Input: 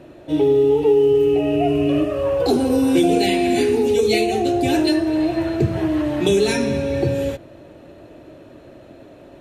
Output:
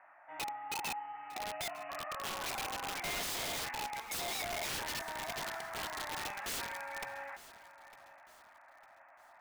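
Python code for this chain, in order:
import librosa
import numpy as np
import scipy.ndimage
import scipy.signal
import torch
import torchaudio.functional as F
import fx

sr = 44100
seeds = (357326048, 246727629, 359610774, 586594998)

y = scipy.signal.sosfilt(scipy.signal.ellip(3, 1.0, 40, [790.0, 2100.0], 'bandpass', fs=sr, output='sos'), x)
y = (np.mod(10.0 ** (30.5 / 20.0) * y + 1.0, 2.0) - 1.0) / 10.0 ** (30.5 / 20.0)
y = fx.echo_feedback(y, sr, ms=904, feedback_pct=39, wet_db=-17.5)
y = F.gain(torch.from_numpy(y), -3.0).numpy()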